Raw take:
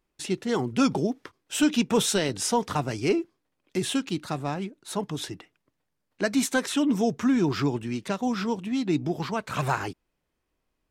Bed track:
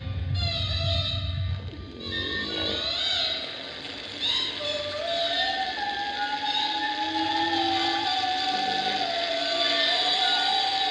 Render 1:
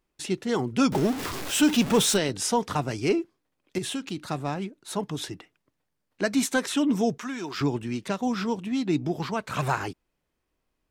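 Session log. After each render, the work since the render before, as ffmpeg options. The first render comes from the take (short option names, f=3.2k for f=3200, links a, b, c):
-filter_complex "[0:a]asettb=1/sr,asplit=3[a][b][c];[a]atrim=end=0.924[d];[b]atrim=start=0.92:end=2.17,asetpts=PTS-STARTPTS,afade=t=in:d=0.004:c=qsin,afade=t=out:st=1.246:d=0.004:c=qsin,aeval=exprs='val(0)+0.5*0.0447*sgn(val(0))':c=same[e];[c]atrim=start=2.166[f];[d][e]acrossfade=d=0.004:c1=hsin:c2=qsin[g];[g][f]acrossfade=d=0.004:c1=qsin:c2=hsin,asettb=1/sr,asplit=3[h][i][j];[h]atrim=end=3.784[k];[i]atrim=start=3.78:end=4.29,asetpts=PTS-STARTPTS,afade=t=in:d=0.004:c=qsin,afade=t=out:st=0.506:d=0.004:c=qsin,acompressor=threshold=-29dB:ratio=2.5:attack=3.2:release=140:knee=1:detection=peak[l];[j]atrim=start=4.286[m];[k][l]acrossfade=d=0.004:c1=hsin:c2=qsin[n];[n][m]acrossfade=d=0.004:c1=qsin:c2=hsin,asettb=1/sr,asplit=3[o][p][q];[o]atrim=end=7.184[r];[p]atrim=start=7.18:end=7.61,asetpts=PTS-STARTPTS,afade=t=in:d=0.004:c=qsin,afade=t=out:st=0.426:d=0.004:c=qsin,highpass=f=1.1k:p=1[s];[q]atrim=start=7.606[t];[r][s]acrossfade=d=0.004:c1=hsin:c2=qsin[u];[u][t]acrossfade=d=0.004:c1=qsin:c2=hsin"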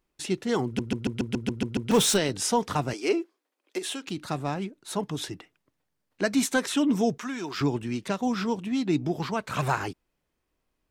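-filter_complex "[0:a]asettb=1/sr,asplit=3[a][b][c];[a]atrim=end=2.934[d];[b]atrim=start=2.93:end=4.08,asetpts=PTS-STARTPTS,afade=t=in:d=0.004:c=qsin,afade=t=out:st=1.146:d=0.004:c=qsin,highpass=f=310:w=0.5412,highpass=f=310:w=1.3066[e];[c]atrim=start=4.076[f];[d][e]acrossfade=d=0.004:c1=hsin:c2=qsin[g];[g][f]acrossfade=d=0.004:c1=qsin:c2=hsin,asplit=10[h][i][j][k][l][m][n][o][p][q];[h]atrim=end=0.792[r];[i]atrim=start=0.648:end=0.792[s];[j]atrim=start=0.648:end=0.792[t];[k]atrim=start=0.648:end=0.792[u];[l]atrim=start=0.648:end=0.792[v];[m]atrim=start=0.648:end=0.792[w];[n]atrim=start=0.648:end=0.792[x];[o]atrim=start=0.648:end=0.792[y];[p]atrim=start=0.648:end=0.792[z];[q]atrim=start=1.908[aa];[r][s]acrossfade=d=0.004:c1=hsin:c2=hsin[ab];[ab][t]acrossfade=d=0.004:c1=hsin:c2=hsin[ac];[ac][u]acrossfade=d=0.004:c1=hsin:c2=hsin[ad];[ad][v]acrossfade=d=0.004:c1=hsin:c2=hsin[ae];[ae][w]acrossfade=d=0.004:c1=hsin:c2=hsin[af];[af][x]acrossfade=d=0.004:c1=hsin:c2=hsin[ag];[ag][y]acrossfade=d=0.004:c1=hsin:c2=hsin[ah];[ah][z]acrossfade=d=0.004:c1=hsin:c2=hsin[ai];[ai][aa]acrossfade=d=0.004:c1=hsin:c2=hsin"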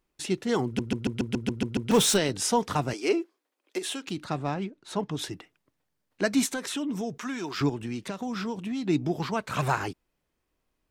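-filter_complex "[0:a]asettb=1/sr,asplit=3[a][b][c];[a]atrim=end=4.244[d];[b]atrim=start=4.24:end=5.19,asetpts=PTS-STARTPTS,afade=t=in:d=0.004:c=qsin,afade=t=out:st=0.946:d=0.004:c=qsin,adynamicsmooth=sensitivity=1.5:basefreq=6.5k[e];[c]atrim=start=5.186[f];[d][e]acrossfade=d=0.004:c1=hsin:c2=qsin[g];[g][f]acrossfade=d=0.004:c1=qsin:c2=hsin,asettb=1/sr,asplit=3[h][i][j];[h]atrim=end=6.464[k];[i]atrim=start=6.46:end=7.17,asetpts=PTS-STARTPTS,afade=t=in:d=0.004:c=qsin,afade=t=out:st=0.706:d=0.004:c=qsin,acompressor=threshold=-30dB:ratio=3:attack=3.2:release=140:knee=1:detection=peak[l];[j]atrim=start=7.166[m];[k][l]acrossfade=d=0.004:c1=hsin:c2=qsin[n];[n][m]acrossfade=d=0.004:c1=qsin:c2=hsin,asettb=1/sr,asplit=3[o][p][q];[o]atrim=end=7.694[r];[p]atrim=start=7.69:end=8.84,asetpts=PTS-STARTPTS,afade=t=in:d=0.004:c=qsin,afade=t=out:st=1.146:d=0.004:c=qsin,acompressor=threshold=-28dB:ratio=6:attack=3.2:release=140:knee=1:detection=peak[s];[q]atrim=start=8.836[t];[r][s]acrossfade=d=0.004:c1=hsin:c2=qsin[u];[u][t]acrossfade=d=0.004:c1=qsin:c2=hsin"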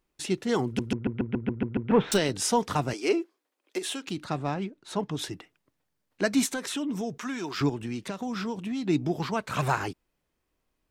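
-filter_complex "[0:a]asettb=1/sr,asplit=3[a][b][c];[a]atrim=end=0.934[d];[b]atrim=start=0.93:end=2.12,asetpts=PTS-STARTPTS,afade=t=in:d=0.004:c=qsin,afade=t=out:st=1.186:d=0.004:c=qsin,lowpass=f=2.2k:w=0.5412,lowpass=f=2.2k:w=1.3066[e];[c]atrim=start=2.116[f];[d][e]acrossfade=d=0.004:c1=hsin:c2=qsin[g];[g][f]acrossfade=d=0.004:c1=qsin:c2=hsin"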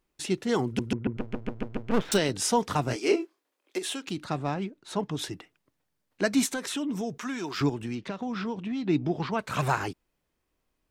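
-filter_complex "[0:a]asettb=1/sr,asplit=3[a][b][c];[a]atrim=end=1.174[d];[b]atrim=start=1.17:end=2.09,asetpts=PTS-STARTPTS,afade=t=in:d=0.004:c=qsin,afade=t=out:st=0.916:d=0.004:c=qsin,aeval=exprs='max(val(0),0)':c=same[e];[c]atrim=start=2.086[f];[d][e]acrossfade=d=0.004:c1=hsin:c2=qsin[g];[g][f]acrossfade=d=0.004:c1=qsin:c2=hsin,asettb=1/sr,asplit=3[h][i][j];[h]atrim=end=2.844[k];[i]atrim=start=2.84:end=3.77,asetpts=PTS-STARTPTS,afade=t=in:d=0.004:c=qsin,afade=t=out:st=0.926:d=0.004:c=qsin,asplit=2[l][m];[m]adelay=25,volume=-5dB[n];[l][n]amix=inputs=2:normalize=0,atrim=end_sample=41013[o];[j]atrim=start=3.766[p];[k][o]acrossfade=d=0.004:c1=hsin:c2=qsin[q];[q][p]acrossfade=d=0.004:c1=qsin:c2=hsin,asettb=1/sr,asplit=3[r][s][t];[r]atrim=end=7.954[u];[s]atrim=start=7.95:end=9.39,asetpts=PTS-STARTPTS,afade=t=in:d=0.004:c=qsin,afade=t=out:st=1.436:d=0.004:c=qsin,lowpass=4.1k[v];[t]atrim=start=9.386[w];[u][v]acrossfade=d=0.004:c1=hsin:c2=qsin[x];[x][w]acrossfade=d=0.004:c1=qsin:c2=hsin"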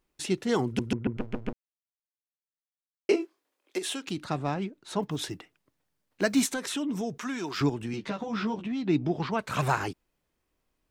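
-filter_complex "[0:a]asettb=1/sr,asplit=3[a][b][c];[a]atrim=end=5.024[d];[b]atrim=start=5.02:end=6.52,asetpts=PTS-STARTPTS,afade=t=in:d=0.004:c=qsin,afade=t=out:st=1.496:d=0.004:c=qsin,acrusher=bits=9:mode=log:mix=0:aa=0.000001[e];[c]atrim=start=6.516[f];[d][e]acrossfade=d=0.004:c1=hsin:c2=qsin[g];[g][f]acrossfade=d=0.004:c1=qsin:c2=hsin,asettb=1/sr,asplit=3[h][i][j];[h]atrim=end=7.924[k];[i]atrim=start=7.92:end=8.66,asetpts=PTS-STARTPTS,afade=t=in:d=0.004:c=qsin,afade=t=out:st=0.736:d=0.004:c=qsin,asplit=2[l][m];[m]adelay=14,volume=-2dB[n];[l][n]amix=inputs=2:normalize=0,atrim=end_sample=32634[o];[j]atrim=start=8.656[p];[k][o]acrossfade=d=0.004:c1=hsin:c2=qsin[q];[q][p]acrossfade=d=0.004:c1=qsin:c2=hsin,asplit=3[r][s][t];[r]atrim=end=1.53,asetpts=PTS-STARTPTS,afade=t=out:st=1.526:d=0.004:c=hsin[u];[s]atrim=start=1.53:end=3.09,asetpts=PTS-STARTPTS,volume=0[v];[t]atrim=start=3.09,asetpts=PTS-STARTPTS,afade=t=in:d=0.004:c=hsin[w];[u][v][w]concat=n=3:v=0:a=1"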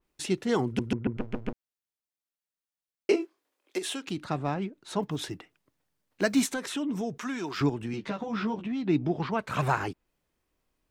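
-af "adynamicequalizer=threshold=0.00355:dfrequency=3300:dqfactor=0.7:tfrequency=3300:tqfactor=0.7:attack=5:release=100:ratio=0.375:range=3:mode=cutabove:tftype=highshelf"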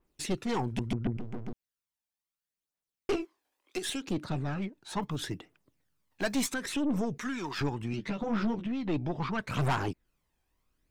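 -af "aphaser=in_gain=1:out_gain=1:delay=1.3:decay=0.49:speed=0.72:type=triangular,aeval=exprs='(tanh(15.8*val(0)+0.45)-tanh(0.45))/15.8':c=same"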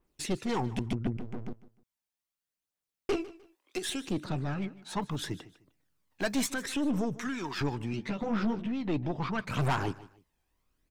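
-af "aecho=1:1:152|304:0.119|0.0333"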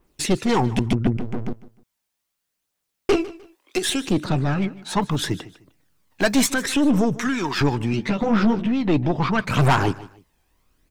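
-af "volume=11.5dB"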